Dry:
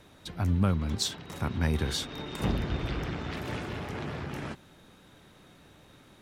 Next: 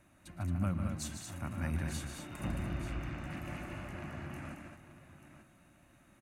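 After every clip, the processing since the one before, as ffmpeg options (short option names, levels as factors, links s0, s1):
-af "superequalizer=7b=0.251:9b=0.708:13b=0.282:14b=0.398:16b=1.58,aecho=1:1:113|150|221|887:0.133|0.422|0.501|0.251,volume=0.376"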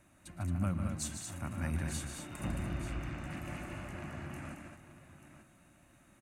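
-af "equalizer=f=8200:w=1.8:g=5.5"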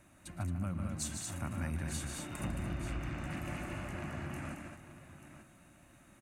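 -af "acompressor=threshold=0.0158:ratio=4,volume=1.33"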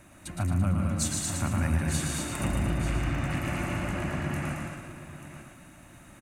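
-af "aecho=1:1:114|228|342|456|570:0.562|0.225|0.09|0.036|0.0144,volume=2.66"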